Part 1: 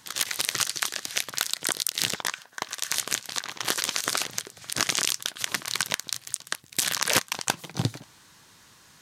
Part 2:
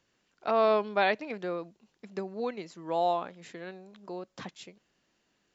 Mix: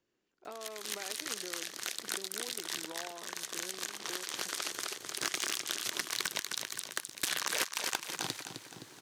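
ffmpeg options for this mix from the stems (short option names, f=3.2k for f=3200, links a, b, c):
-filter_complex "[0:a]highpass=f=230:p=1,acrusher=bits=10:mix=0:aa=0.000001,adelay=450,volume=-1.5dB,asplit=2[a][b];[b]volume=-11.5dB[c];[1:a]acompressor=threshold=-31dB:ratio=6,volume=-11dB,asplit=2[d][e];[e]apad=whole_len=417506[f];[a][f]sidechaincompress=threshold=-57dB:ratio=6:attack=16:release=1410[g];[c]aecho=0:1:259|518|777|1036|1295|1554:1|0.42|0.176|0.0741|0.0311|0.0131[h];[g][d][h]amix=inputs=3:normalize=0,equalizer=f=360:w=1.7:g=10,acrossover=split=850|4000[i][j][k];[i]acompressor=threshold=-46dB:ratio=4[l];[j]acompressor=threshold=-32dB:ratio=4[m];[k]acompressor=threshold=-31dB:ratio=4[n];[l][m][n]amix=inputs=3:normalize=0,asoftclip=type=hard:threshold=-20dB"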